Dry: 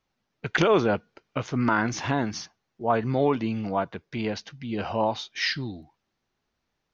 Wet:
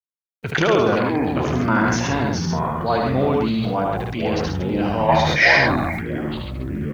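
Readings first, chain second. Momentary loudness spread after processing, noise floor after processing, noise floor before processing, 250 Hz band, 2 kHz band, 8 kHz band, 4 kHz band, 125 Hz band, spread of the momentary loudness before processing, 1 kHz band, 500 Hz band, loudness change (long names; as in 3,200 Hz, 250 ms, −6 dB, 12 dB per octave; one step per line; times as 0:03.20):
12 LU, below −85 dBFS, −80 dBFS, +7.5 dB, +11.0 dB, can't be measured, +6.5 dB, +9.0 dB, 13 LU, +7.5 dB, +6.5 dB, +7.0 dB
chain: delay with pitch and tempo change per echo 149 ms, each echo −6 semitones, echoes 3, each echo −6 dB
in parallel at −3 dB: downward compressor 10 to 1, threshold −30 dBFS, peak gain reduction 14.5 dB
on the sum: gain on a spectral selection 0:05.09–0:05.93, 540–2,500 Hz +12 dB
bit-depth reduction 10 bits, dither none
on a send: loudspeakers that aren't time-aligned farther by 26 metres −4 dB, 46 metres −5 dB
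on the sum: level that may fall only so fast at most 29 dB per second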